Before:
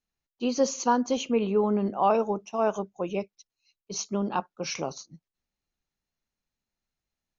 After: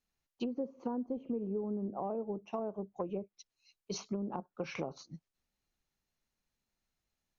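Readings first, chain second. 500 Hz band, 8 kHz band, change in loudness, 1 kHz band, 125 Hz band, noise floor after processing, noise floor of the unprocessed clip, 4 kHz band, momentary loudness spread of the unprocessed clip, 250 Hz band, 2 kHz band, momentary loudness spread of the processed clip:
-12.0 dB, n/a, -11.5 dB, -16.0 dB, -7.5 dB, under -85 dBFS, under -85 dBFS, -13.5 dB, 11 LU, -9.0 dB, -13.0 dB, 6 LU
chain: treble ducked by the level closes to 470 Hz, closed at -24.5 dBFS; compressor 6:1, threshold -35 dBFS, peak gain reduction 13.5 dB; gain +1 dB

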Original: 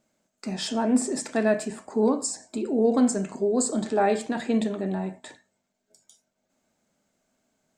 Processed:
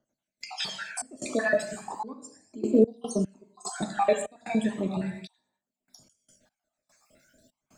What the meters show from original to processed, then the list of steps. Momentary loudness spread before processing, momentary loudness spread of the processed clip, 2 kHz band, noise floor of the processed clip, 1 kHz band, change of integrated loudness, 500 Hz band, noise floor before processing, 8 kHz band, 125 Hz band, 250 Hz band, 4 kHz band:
9 LU, 16 LU, +2.0 dB, under -85 dBFS, -2.5 dB, -3.5 dB, -3.0 dB, -78 dBFS, -7.5 dB, -1.5 dB, -5.0 dB, -0.5 dB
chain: random spectral dropouts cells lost 61%; non-linear reverb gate 0.27 s falling, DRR 5 dB; step gate "..xxx.xxxx...x.x" 74 bpm -24 dB; phaser 0.36 Hz, delay 1.8 ms, feedback 50%; three-band squash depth 40%; gain +1.5 dB

